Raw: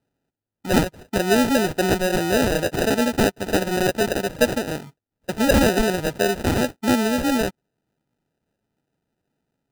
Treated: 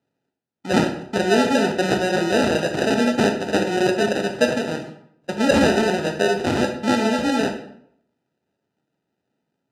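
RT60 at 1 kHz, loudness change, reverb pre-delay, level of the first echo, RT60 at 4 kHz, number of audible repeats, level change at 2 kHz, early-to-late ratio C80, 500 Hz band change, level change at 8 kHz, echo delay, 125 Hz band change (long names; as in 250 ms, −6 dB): 0.65 s, +1.0 dB, 17 ms, no echo audible, 0.50 s, no echo audible, +1.0 dB, 11.0 dB, +1.5 dB, −3.5 dB, no echo audible, −1.5 dB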